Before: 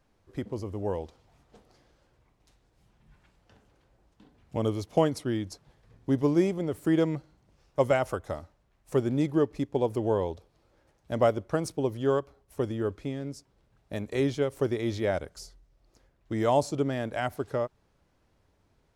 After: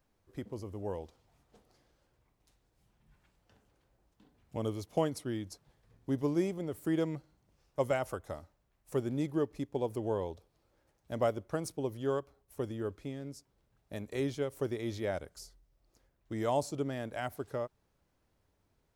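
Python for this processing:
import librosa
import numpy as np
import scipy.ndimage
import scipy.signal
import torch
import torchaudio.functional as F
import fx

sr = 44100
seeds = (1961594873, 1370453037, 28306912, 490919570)

y = fx.high_shelf(x, sr, hz=11000.0, db=12.0)
y = y * 10.0 ** (-7.0 / 20.0)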